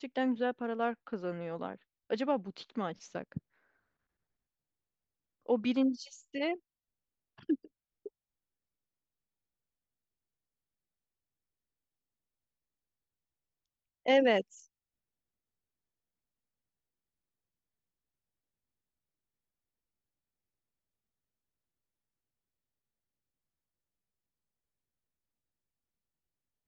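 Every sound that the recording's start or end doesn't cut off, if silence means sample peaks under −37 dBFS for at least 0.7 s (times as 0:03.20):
0:05.49–0:06.55
0:07.49–0:08.07
0:14.06–0:14.41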